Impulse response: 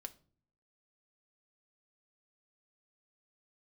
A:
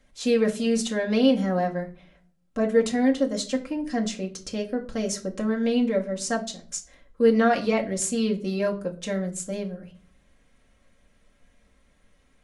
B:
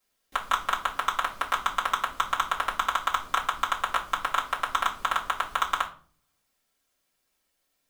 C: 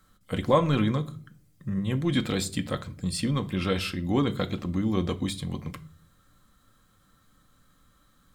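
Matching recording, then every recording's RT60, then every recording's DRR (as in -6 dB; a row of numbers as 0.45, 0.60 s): C; 0.45, 0.45, 0.45 s; -0.5, -6.5, 6.0 dB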